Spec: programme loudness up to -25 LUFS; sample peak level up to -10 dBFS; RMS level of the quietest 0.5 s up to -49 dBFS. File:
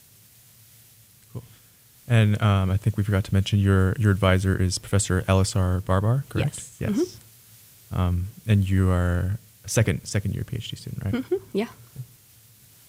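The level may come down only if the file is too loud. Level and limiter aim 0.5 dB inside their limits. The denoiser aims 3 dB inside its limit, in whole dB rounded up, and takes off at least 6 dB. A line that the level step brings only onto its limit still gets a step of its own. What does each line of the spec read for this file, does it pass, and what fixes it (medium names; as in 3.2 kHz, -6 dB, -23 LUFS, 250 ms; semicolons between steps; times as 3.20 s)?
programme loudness -24.0 LUFS: fail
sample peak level -5.5 dBFS: fail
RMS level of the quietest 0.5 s -54 dBFS: pass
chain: trim -1.5 dB; peak limiter -10.5 dBFS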